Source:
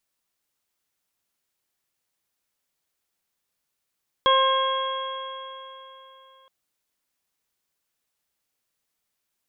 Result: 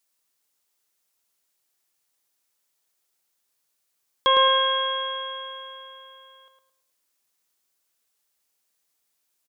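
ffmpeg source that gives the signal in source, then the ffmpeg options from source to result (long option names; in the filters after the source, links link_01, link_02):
-f lavfi -i "aevalsrc='0.0944*pow(10,-3*t/3.43)*sin(2*PI*529.53*t)+0.15*pow(10,-3*t/3.43)*sin(2*PI*1062.22*t)+0.0355*pow(10,-3*t/3.43)*sin(2*PI*1601.22*t)+0.0158*pow(10,-3*t/3.43)*sin(2*PI*2149.59*t)+0.00944*pow(10,-3*t/3.43)*sin(2*PI*2710.32*t)+0.0841*pow(10,-3*t/3.43)*sin(2*PI*3286.28*t)':duration=2.22:sample_rate=44100"
-filter_complex "[0:a]bass=frequency=250:gain=-7,treble=frequency=4000:gain=6,asplit=2[link_01][link_02];[link_02]adelay=108,lowpass=frequency=2100:poles=1,volume=-4dB,asplit=2[link_03][link_04];[link_04]adelay=108,lowpass=frequency=2100:poles=1,volume=0.36,asplit=2[link_05][link_06];[link_06]adelay=108,lowpass=frequency=2100:poles=1,volume=0.36,asplit=2[link_07][link_08];[link_08]adelay=108,lowpass=frequency=2100:poles=1,volume=0.36,asplit=2[link_09][link_10];[link_10]adelay=108,lowpass=frequency=2100:poles=1,volume=0.36[link_11];[link_01][link_03][link_05][link_07][link_09][link_11]amix=inputs=6:normalize=0"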